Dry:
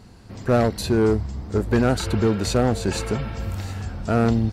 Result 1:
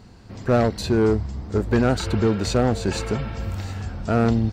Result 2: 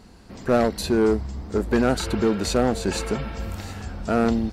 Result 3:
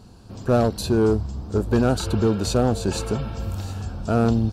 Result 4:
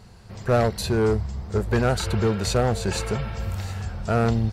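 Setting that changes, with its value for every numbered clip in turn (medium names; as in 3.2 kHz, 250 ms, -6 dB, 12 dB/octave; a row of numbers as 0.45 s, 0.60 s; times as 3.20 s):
peaking EQ, frequency: 11 kHz, 110 Hz, 2 kHz, 280 Hz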